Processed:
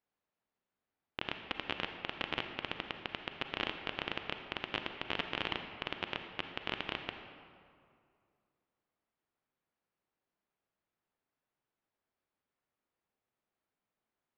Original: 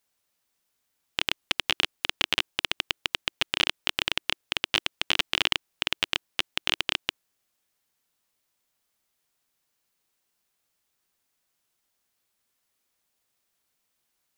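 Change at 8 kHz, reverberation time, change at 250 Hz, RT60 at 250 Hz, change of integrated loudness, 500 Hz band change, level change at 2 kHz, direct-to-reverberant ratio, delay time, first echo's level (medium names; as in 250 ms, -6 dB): under -25 dB, 2.3 s, -3.0 dB, 2.4 s, -12.0 dB, -3.5 dB, -10.5 dB, 6.0 dB, no echo, no echo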